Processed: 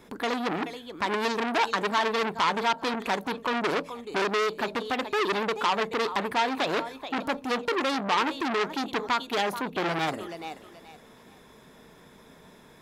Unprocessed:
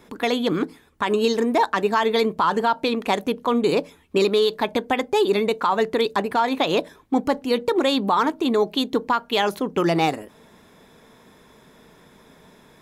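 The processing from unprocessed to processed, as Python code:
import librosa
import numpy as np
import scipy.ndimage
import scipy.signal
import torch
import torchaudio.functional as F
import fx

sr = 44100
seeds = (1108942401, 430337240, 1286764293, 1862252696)

y = fx.echo_thinned(x, sr, ms=430, feedback_pct=27, hz=470.0, wet_db=-13.5)
y = fx.transformer_sat(y, sr, knee_hz=2500.0)
y = y * 10.0 ** (-1.5 / 20.0)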